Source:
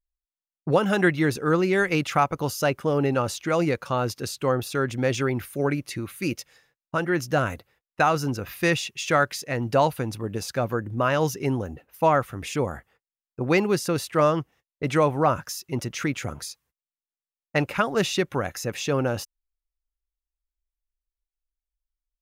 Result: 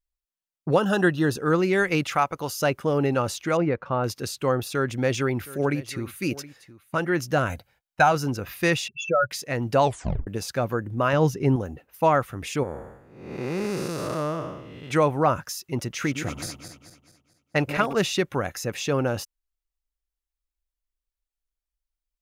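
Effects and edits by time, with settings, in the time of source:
0.8–1.39 Butterworth band-stop 2200 Hz, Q 3
2.15–2.6 low shelf 390 Hz -7.5 dB
3.57–4.04 LPF 1800 Hz
4.68–6.95 echo 0.719 s -18 dB
7.49–8.12 comb 1.3 ms, depth 59%
8.88–9.31 spectral contrast raised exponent 4
9.82 tape stop 0.45 s
11.13–11.56 tilt -2 dB/oct
12.63–14.91 time blur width 0.397 s
15.92–17.93 regenerating reverse delay 0.109 s, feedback 64%, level -8.5 dB

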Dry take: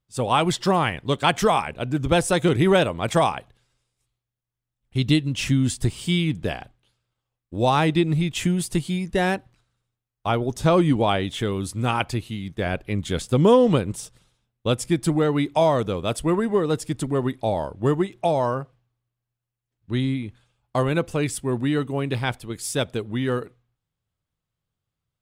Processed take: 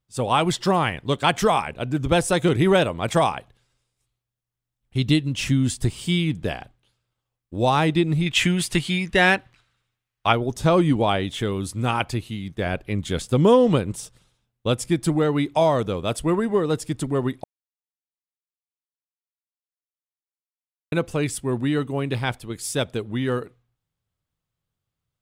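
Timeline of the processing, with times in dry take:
8.26–10.33 bell 2300 Hz +11 dB 2.3 oct
17.44–20.92 mute

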